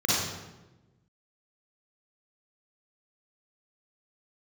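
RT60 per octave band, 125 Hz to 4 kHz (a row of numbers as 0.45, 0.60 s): 1.6, 1.5, 1.2, 1.0, 0.90, 0.75 s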